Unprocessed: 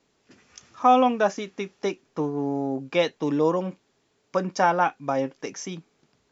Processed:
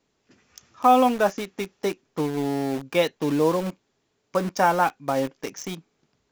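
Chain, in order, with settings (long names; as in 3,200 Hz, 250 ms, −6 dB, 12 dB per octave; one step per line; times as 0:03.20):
low-shelf EQ 100 Hz +4.5 dB
in parallel at −3 dB: bit reduction 5 bits
on the sum: level −4 dB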